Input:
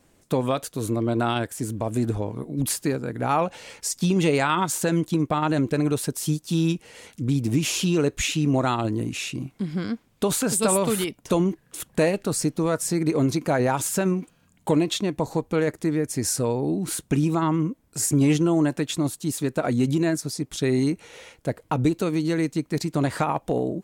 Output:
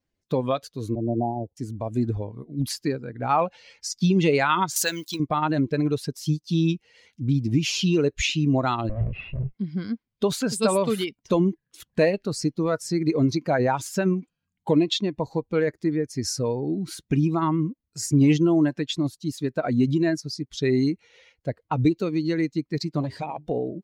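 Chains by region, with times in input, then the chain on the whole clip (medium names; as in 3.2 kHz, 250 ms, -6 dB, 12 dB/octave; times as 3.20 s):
0.95–1.57 s: steep low-pass 920 Hz 96 dB/octave + three bands expanded up and down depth 40%
4.76–5.20 s: block-companded coder 7-bit + tilt EQ +4 dB/octave
8.89–9.54 s: comb filter that takes the minimum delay 1.5 ms + low-pass 2.7 kHz 24 dB/octave + bass shelf 250 Hz +9 dB
23.01–23.47 s: peaking EQ 1.3 kHz -12 dB 0.72 oct + hum notches 50/100/150/200/250/300/350/400 Hz + transformer saturation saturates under 480 Hz
whole clip: expander on every frequency bin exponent 1.5; resonant high shelf 6.7 kHz -8 dB, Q 1.5; trim +3 dB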